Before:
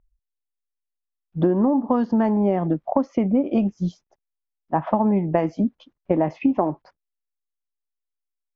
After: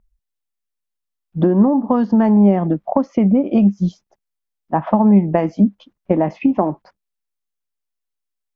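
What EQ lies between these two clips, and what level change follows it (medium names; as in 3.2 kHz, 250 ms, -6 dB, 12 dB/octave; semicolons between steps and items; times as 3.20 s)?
peaking EQ 200 Hz +7.5 dB 0.21 oct; +3.5 dB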